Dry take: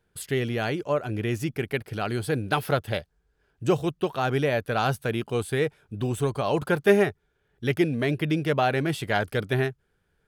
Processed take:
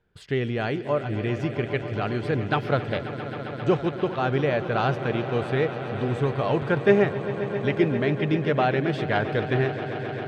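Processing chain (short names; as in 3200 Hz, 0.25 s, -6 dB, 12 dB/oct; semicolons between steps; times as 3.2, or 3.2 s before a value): air absorption 170 m; on a send: swelling echo 0.133 s, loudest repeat 5, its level -15 dB; on the sum: gain +1 dB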